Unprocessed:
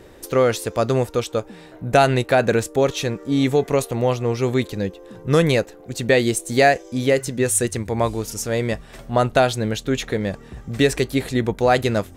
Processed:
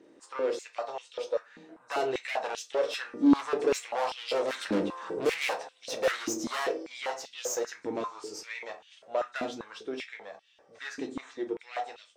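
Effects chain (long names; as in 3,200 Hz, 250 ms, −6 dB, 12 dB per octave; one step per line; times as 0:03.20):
hearing-aid frequency compression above 3,700 Hz 1.5 to 1
source passing by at 0:04.94, 6 m/s, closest 3.1 metres
tube saturation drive 34 dB, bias 0.45
on a send at −4 dB: convolution reverb RT60 0.30 s, pre-delay 6 ms
on the sum: high-pass on a step sequencer 5.1 Hz 270–3,100 Hz
level +4 dB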